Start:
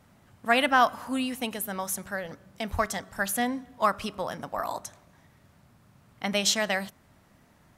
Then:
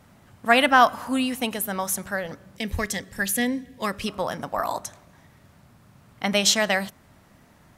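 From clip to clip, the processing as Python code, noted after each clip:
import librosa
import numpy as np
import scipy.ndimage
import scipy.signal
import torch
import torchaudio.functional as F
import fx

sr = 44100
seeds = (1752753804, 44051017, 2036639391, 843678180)

y = fx.spec_box(x, sr, start_s=2.57, length_s=1.5, low_hz=570.0, high_hz=1600.0, gain_db=-11)
y = y * 10.0 ** (5.0 / 20.0)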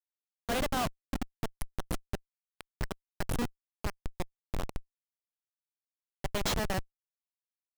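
y = fx.schmitt(x, sr, flips_db=-17.5)
y = y * 10.0 ** (-3.5 / 20.0)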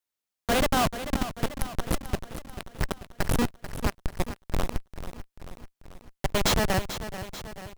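y = fx.echo_feedback(x, sr, ms=439, feedback_pct=58, wet_db=-11.5)
y = y * 10.0 ** (7.5 / 20.0)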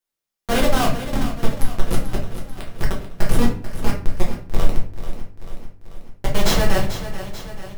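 y = fx.room_shoebox(x, sr, seeds[0], volume_m3=35.0, walls='mixed', distance_m=0.81)
y = y * 10.0 ** (-1.0 / 20.0)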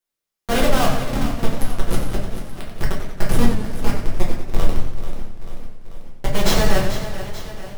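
y = fx.echo_warbled(x, sr, ms=91, feedback_pct=57, rate_hz=2.8, cents=151, wet_db=-8.5)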